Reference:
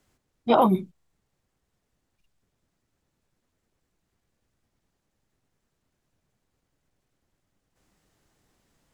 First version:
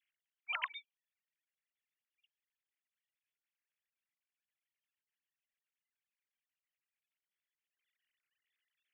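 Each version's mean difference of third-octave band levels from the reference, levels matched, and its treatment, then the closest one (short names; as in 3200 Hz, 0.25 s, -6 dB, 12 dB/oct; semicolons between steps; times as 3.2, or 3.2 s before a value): 15.5 dB: sine-wave speech; inverse Chebyshev high-pass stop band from 430 Hz, stop band 70 dB; upward expander 1.5:1, over -48 dBFS; gain +3 dB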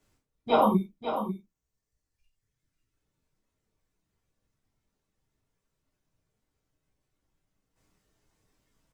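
3.0 dB: reverb removal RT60 2 s; echo 0.544 s -9 dB; non-linear reverb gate 0.12 s falling, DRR -3.5 dB; gain -6.5 dB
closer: second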